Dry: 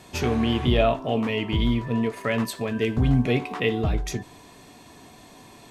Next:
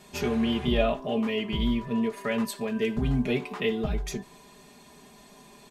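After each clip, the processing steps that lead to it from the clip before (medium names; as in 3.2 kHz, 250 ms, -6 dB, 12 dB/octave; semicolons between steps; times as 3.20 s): treble shelf 11 kHz +4 dB; comb 4.9 ms, depth 81%; trim -6 dB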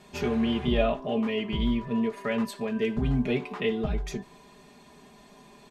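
low-pass 4 kHz 6 dB/octave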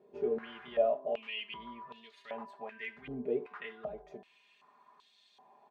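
step-sequenced band-pass 2.6 Hz 440–3700 Hz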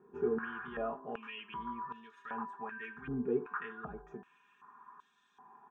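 resonant high shelf 2.3 kHz -9.5 dB, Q 3; static phaser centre 3 kHz, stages 8; trim +6.5 dB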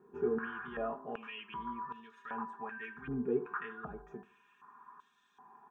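bucket-brigade echo 79 ms, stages 1024, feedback 35%, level -20 dB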